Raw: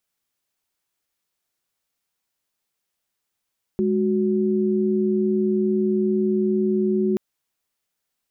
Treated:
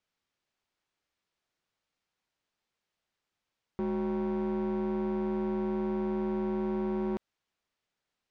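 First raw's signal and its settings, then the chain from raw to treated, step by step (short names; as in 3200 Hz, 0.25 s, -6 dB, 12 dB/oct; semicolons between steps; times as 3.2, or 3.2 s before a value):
chord G#3/F#4 sine, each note -20.5 dBFS 3.38 s
limiter -23 dBFS; wavefolder -26 dBFS; air absorption 120 m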